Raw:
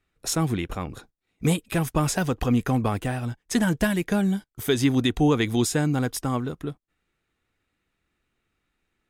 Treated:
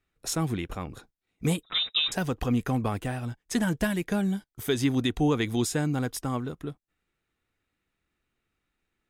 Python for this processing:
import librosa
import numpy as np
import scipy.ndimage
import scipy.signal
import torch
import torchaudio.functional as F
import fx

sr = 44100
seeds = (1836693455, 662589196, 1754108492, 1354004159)

y = fx.freq_invert(x, sr, carrier_hz=3800, at=(1.63, 2.12))
y = F.gain(torch.from_numpy(y), -4.0).numpy()